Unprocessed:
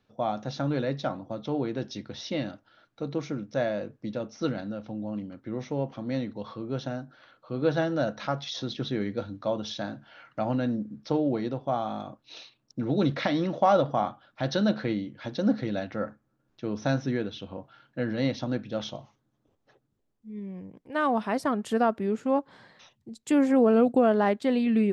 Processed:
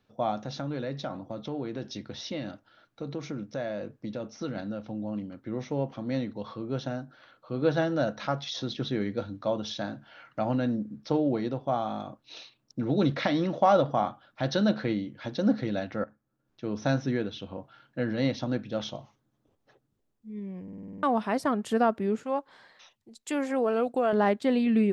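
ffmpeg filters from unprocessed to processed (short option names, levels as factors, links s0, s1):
-filter_complex "[0:a]asettb=1/sr,asplit=3[s0][s1][s2];[s0]atrim=end=0.424[s3];[s1]atrim=start=0.42:end=4.56,asetpts=PTS-STARTPTS,afade=t=in:d=0.004:c=qsin,afade=t=out:st=4.136:d=0.004:c=qsin,acompressor=threshold=0.0282:ratio=2.5:attack=3.2:release=140:knee=1:detection=peak[s4];[s2]atrim=start=4.556[s5];[s3][s4]acrossfade=d=0.004:c1=hsin:c2=qsin[s6];[s6][s5]acrossfade=d=0.004:c1=qsin:c2=hsin,asettb=1/sr,asplit=3[s7][s8][s9];[s7]atrim=end=22.234[s10];[s8]atrim=start=22.23:end=24.13,asetpts=PTS-STARTPTS,afade=t=in:d=0.004:c=qsin,afade=t=out:st=1.896:d=0.004:c=qsin,equalizer=f=140:w=0.5:g=-14.5[s11];[s9]atrim=start=24.126[s12];[s10][s11]acrossfade=d=0.004:c1=hsin:c2=qsin[s13];[s13][s12]acrossfade=d=0.004:c1=qsin:c2=hsin,asplit=10[s14][s15][s16][s17][s18][s19][s20][s21][s22][s23];[s14]atrim=end=16.04,asetpts=PTS-STARTPTS,afade=t=out:st=16.036:d=0.004:c=hsin:silence=0.223872[s24];[s15]atrim=start=16.04:end=20.682,asetpts=PTS-STARTPTS,afade=t=in:d=0.75:silence=0.223872[s25];[s16]atrim=start=20.628:end=20.682[s26];[s17]atrim=start=20.628:end=20.682[s27];[s18]atrim=start=20.628:end=20.682[s28];[s19]atrim=start=20.628:end=20.682[s29];[s20]atrim=start=20.628:end=20.682[s30];[s21]atrim=start=20.628:end=20.682[s31];[s22]atrim=start=20.628:end=20.682[s32];[s23]atrim=start=21.028[s33];[s24][s25]concat=n=2:v=0:a=1[s34];[s34][s26]acrossfade=d=0.004:c1=hsin:c2=hsin[s35];[s35][s27]acrossfade=d=0.004:c1=hsin:c2=hsin[s36];[s36][s28]acrossfade=d=0.004:c1=hsin:c2=hsin[s37];[s37][s29]acrossfade=d=0.004:c1=hsin:c2=hsin[s38];[s38][s30]acrossfade=d=0.004:c1=hsin:c2=hsin[s39];[s39][s31]acrossfade=d=0.004:c1=hsin:c2=hsin[s40];[s40][s32]acrossfade=d=0.004:c1=hsin:c2=hsin[s41];[s41][s33]acrossfade=d=0.004:c1=hsin:c2=hsin"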